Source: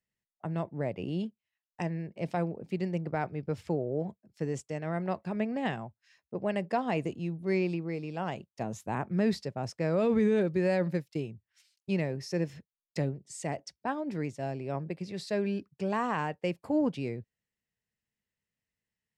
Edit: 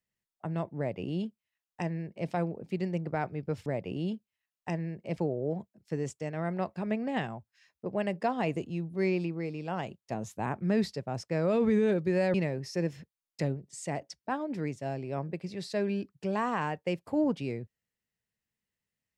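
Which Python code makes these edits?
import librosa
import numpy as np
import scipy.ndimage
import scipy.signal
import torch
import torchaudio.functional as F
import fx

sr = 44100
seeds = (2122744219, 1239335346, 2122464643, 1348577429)

y = fx.edit(x, sr, fx.duplicate(start_s=0.78, length_s=1.51, to_s=3.66),
    fx.cut(start_s=10.83, length_s=1.08), tone=tone)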